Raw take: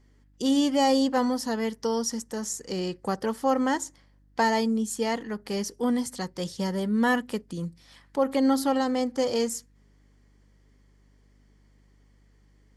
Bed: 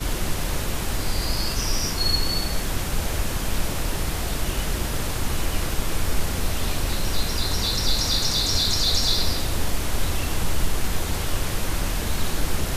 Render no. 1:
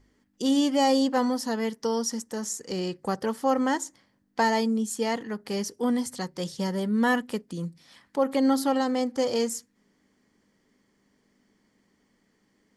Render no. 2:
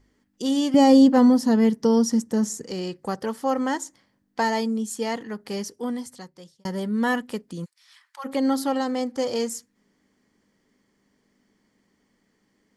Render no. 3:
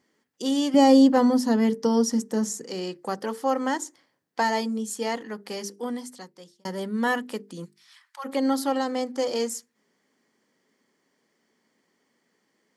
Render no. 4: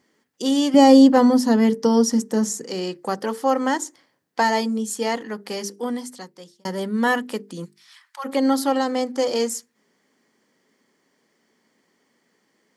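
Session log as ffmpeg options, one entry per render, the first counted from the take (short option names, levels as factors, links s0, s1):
-af "bandreject=f=50:t=h:w=4,bandreject=f=100:t=h:w=4,bandreject=f=150:t=h:w=4"
-filter_complex "[0:a]asettb=1/sr,asplit=3[s0][s1][s2];[s0]atrim=end=0.744[s3];[s1]atrim=start=0.74:end=2.67,asetpts=PTS-STARTPTS,afade=t=in:d=0.004:c=qsin,afade=t=out:st=1.926:d=0.004:c=qsin,equalizer=f=150:t=o:w=2.8:g=14.5[s4];[s2]atrim=start=2.666[s5];[s3][s4]acrossfade=d=0.004:c1=hsin:c2=qsin[s6];[s6][s5]acrossfade=d=0.004:c1=qsin:c2=hsin,asplit=3[s7][s8][s9];[s7]afade=t=out:st=7.64:d=0.02[s10];[s8]highpass=f=1100:w=0.5412,highpass=f=1100:w=1.3066,afade=t=in:st=7.64:d=0.02,afade=t=out:st=8.24:d=0.02[s11];[s9]afade=t=in:st=8.24:d=0.02[s12];[s10][s11][s12]amix=inputs=3:normalize=0,asplit=2[s13][s14];[s13]atrim=end=6.65,asetpts=PTS-STARTPTS,afade=t=out:st=5.52:d=1.13[s15];[s14]atrim=start=6.65,asetpts=PTS-STARTPTS,afade=t=in:d=0.004:c=hsin[s16];[s15][s16]concat=n=2:v=0:a=1"
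-af "highpass=220,bandreject=f=50:t=h:w=6,bandreject=f=100:t=h:w=6,bandreject=f=150:t=h:w=6,bandreject=f=200:t=h:w=6,bandreject=f=250:t=h:w=6,bandreject=f=300:t=h:w=6,bandreject=f=350:t=h:w=6,bandreject=f=400:t=h:w=6,bandreject=f=450:t=h:w=6"
-af "volume=1.68"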